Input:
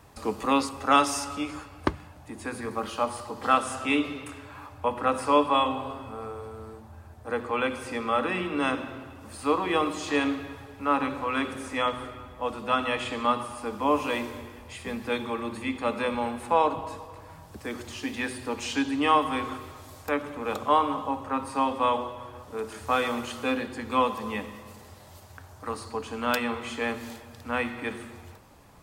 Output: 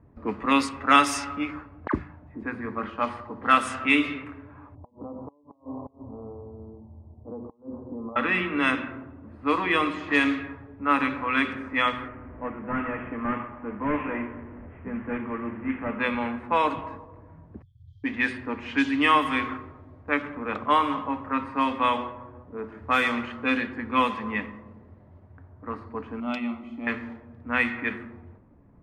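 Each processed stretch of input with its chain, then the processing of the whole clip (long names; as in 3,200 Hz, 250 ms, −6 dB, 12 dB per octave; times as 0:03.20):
0:01.87–0:02.43: all-pass dispersion lows, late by 68 ms, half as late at 1,200 Hz + dynamic equaliser 2,900 Hz, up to −7 dB, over −54 dBFS, Q 2.2 + double-tracking delay 37 ms −13.5 dB
0:04.75–0:08.16: downward compressor 5 to 1, threshold −30 dBFS + Butterworth low-pass 1,000 Hz 48 dB per octave + gate with flip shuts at −26 dBFS, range −26 dB
0:12.08–0:16.00: linear delta modulator 16 kbit/s, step −34.5 dBFS + high-frequency loss of the air 380 metres
0:17.62–0:18.04: downward compressor 4 to 1, threshold −38 dBFS + linear-phase brick-wall band-stop 150–3,100 Hz + high-frequency loss of the air 56 metres
0:26.20–0:26.87: parametric band 1,000 Hz −12 dB 0.38 octaves + phaser with its sweep stopped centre 450 Hz, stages 6
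whole clip: octave-band graphic EQ 250/500/2,000 Hz +4/−4/+10 dB; low-pass that shuts in the quiet parts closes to 460 Hz, open at −17 dBFS; notch filter 800 Hz, Q 12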